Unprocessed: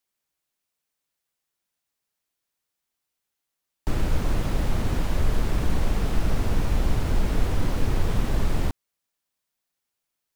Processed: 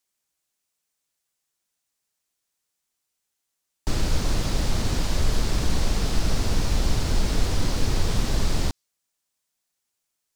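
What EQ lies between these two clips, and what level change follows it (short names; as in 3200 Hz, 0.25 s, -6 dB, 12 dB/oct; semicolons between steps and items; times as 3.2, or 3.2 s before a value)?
bell 7300 Hz +6.5 dB 1.3 oct; dynamic EQ 4600 Hz, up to +8 dB, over -56 dBFS, Q 1.3; 0.0 dB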